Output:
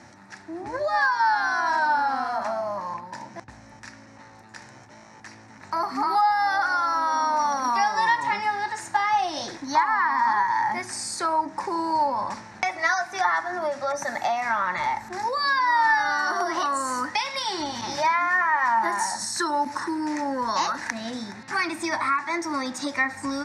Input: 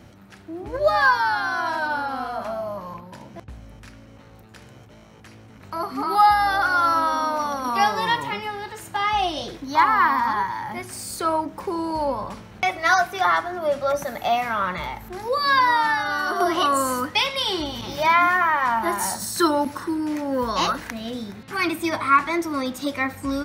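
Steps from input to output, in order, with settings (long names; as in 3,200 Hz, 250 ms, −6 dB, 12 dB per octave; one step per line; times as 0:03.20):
high-shelf EQ 5,300 Hz +8.5 dB
downward compressor, threshold −24 dBFS, peak gain reduction 12.5 dB
loudspeaker in its box 140–8,100 Hz, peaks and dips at 170 Hz −6 dB, 450 Hz −8 dB, 890 Hz +9 dB, 1,800 Hz +9 dB, 3,100 Hz −10 dB, 5,500 Hz +4 dB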